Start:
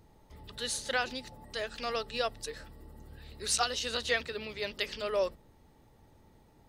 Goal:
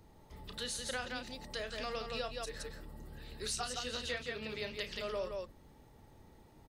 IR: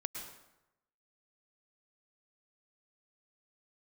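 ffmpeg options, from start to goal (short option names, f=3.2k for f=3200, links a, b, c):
-filter_complex "[0:a]aecho=1:1:32.07|169.1:0.316|0.501,acrossover=split=200[a][b];[b]acompressor=threshold=-39dB:ratio=3[c];[a][c]amix=inputs=2:normalize=0"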